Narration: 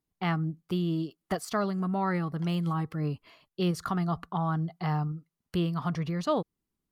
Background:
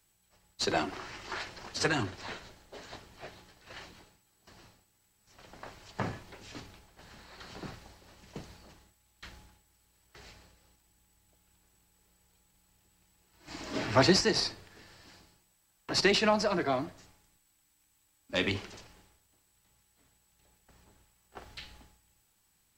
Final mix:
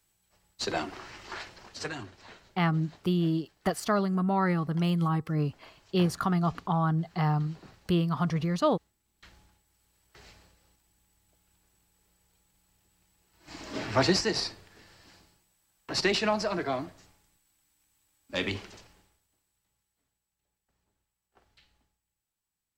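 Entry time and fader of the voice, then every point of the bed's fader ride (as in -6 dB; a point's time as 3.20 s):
2.35 s, +2.5 dB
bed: 1.38 s -1.5 dB
2.01 s -9 dB
8.94 s -9 dB
9.86 s -1 dB
18.74 s -1 dB
20.40 s -17 dB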